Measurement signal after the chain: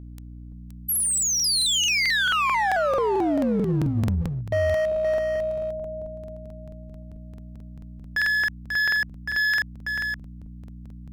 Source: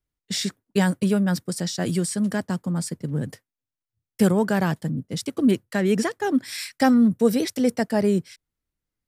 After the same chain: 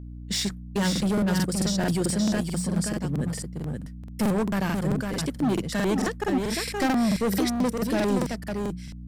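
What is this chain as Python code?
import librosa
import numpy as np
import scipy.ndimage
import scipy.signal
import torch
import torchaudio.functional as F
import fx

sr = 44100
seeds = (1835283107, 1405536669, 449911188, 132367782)

p1 = fx.hum_notches(x, sr, base_hz=60, count=3)
p2 = fx.add_hum(p1, sr, base_hz=60, snr_db=15)
p3 = np.clip(10.0 ** (21.0 / 20.0) * p2, -1.0, 1.0) / 10.0 ** (21.0 / 20.0)
p4 = p3 + fx.echo_single(p3, sr, ms=522, db=-5.0, dry=0)
y = fx.buffer_crackle(p4, sr, first_s=0.91, period_s=0.22, block=2048, kind='repeat')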